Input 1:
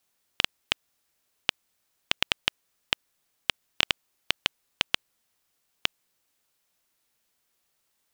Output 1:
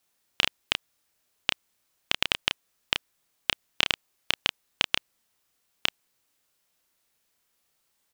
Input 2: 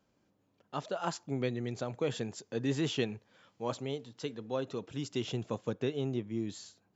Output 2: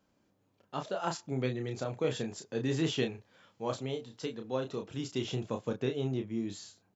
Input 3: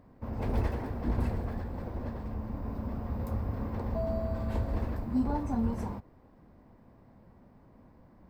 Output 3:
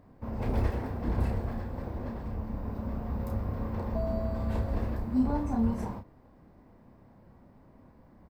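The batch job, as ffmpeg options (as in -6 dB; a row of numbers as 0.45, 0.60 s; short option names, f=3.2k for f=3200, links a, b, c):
-filter_complex "[0:a]asplit=2[a][b];[b]adelay=31,volume=-6dB[c];[a][c]amix=inputs=2:normalize=0"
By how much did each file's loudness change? +1.0, +1.0, +1.5 LU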